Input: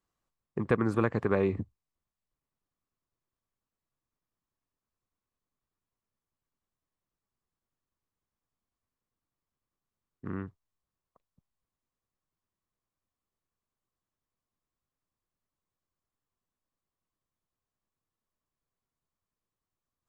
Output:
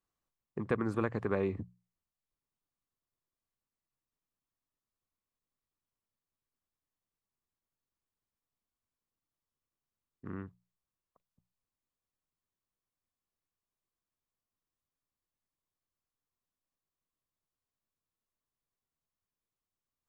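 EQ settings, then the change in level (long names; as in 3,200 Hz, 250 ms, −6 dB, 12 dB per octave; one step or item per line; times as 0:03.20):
mains-hum notches 60/120/180 Hz
−5.0 dB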